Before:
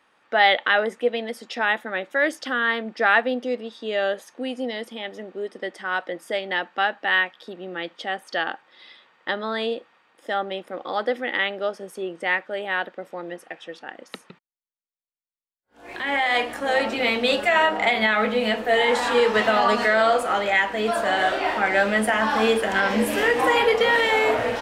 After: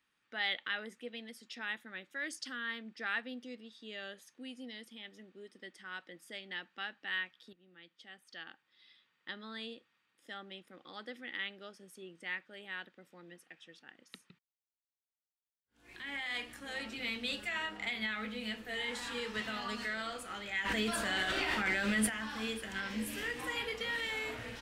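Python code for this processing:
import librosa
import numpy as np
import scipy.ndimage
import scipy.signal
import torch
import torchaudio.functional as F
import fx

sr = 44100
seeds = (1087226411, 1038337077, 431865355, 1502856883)

y = fx.spec_box(x, sr, start_s=2.3, length_s=0.26, low_hz=4000.0, high_hz=11000.0, gain_db=7)
y = fx.env_flatten(y, sr, amount_pct=100, at=(20.64, 22.08), fade=0.02)
y = fx.edit(y, sr, fx.fade_in_from(start_s=7.53, length_s=1.86, floor_db=-13.0), tone=tone)
y = fx.tone_stack(y, sr, knobs='6-0-2')
y = y * 10.0 ** (3.5 / 20.0)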